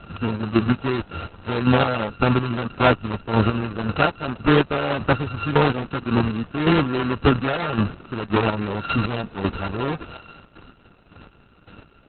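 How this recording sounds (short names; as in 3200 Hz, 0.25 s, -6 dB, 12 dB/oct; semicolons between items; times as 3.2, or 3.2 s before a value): a buzz of ramps at a fixed pitch in blocks of 32 samples; chopped level 1.8 Hz, depth 60%, duty 30%; Opus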